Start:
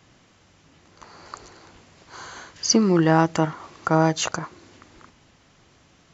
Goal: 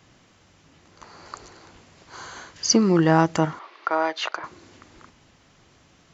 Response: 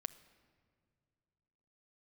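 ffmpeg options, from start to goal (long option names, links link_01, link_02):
-filter_complex "[0:a]asettb=1/sr,asplit=3[link_01][link_02][link_03];[link_01]atrim=end=3.594[link_04];[link_02]atrim=start=3.59:end=4.44,asetpts=PTS-STARTPTS,afade=type=in:duration=0.004:curve=qsin,afade=type=out:start_time=0.846:duration=0.004:curve=qsin,highpass=frequency=410:width=0.5412,highpass=frequency=410:width=1.3066,equalizer=frequency=490:width_type=q:width=4:gain=-6,equalizer=frequency=750:width_type=q:width=4:gain=-3,equalizer=frequency=2100:width_type=q:width=4:gain=3,lowpass=frequency=4300:width=0.5412,lowpass=frequency=4300:width=1.3066[link_05];[link_03]atrim=start=4.436[link_06];[link_04][link_05]acrossfade=duration=0.004:curve1=hsin:curve2=qsin[link_07];[link_07][link_06]acrossfade=duration=0.004:curve1=qsin:curve2=hsin"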